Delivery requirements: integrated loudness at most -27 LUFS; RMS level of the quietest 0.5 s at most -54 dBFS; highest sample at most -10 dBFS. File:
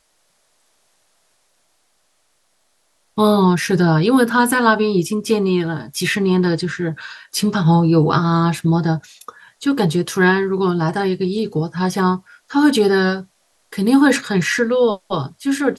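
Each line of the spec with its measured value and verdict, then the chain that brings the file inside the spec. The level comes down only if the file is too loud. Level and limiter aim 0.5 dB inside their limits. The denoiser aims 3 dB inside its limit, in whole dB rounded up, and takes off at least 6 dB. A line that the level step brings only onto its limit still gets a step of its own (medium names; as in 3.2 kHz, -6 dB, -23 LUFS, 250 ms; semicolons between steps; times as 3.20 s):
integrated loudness -17.0 LUFS: fail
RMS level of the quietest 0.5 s -63 dBFS: pass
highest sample -3.0 dBFS: fail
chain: trim -10.5 dB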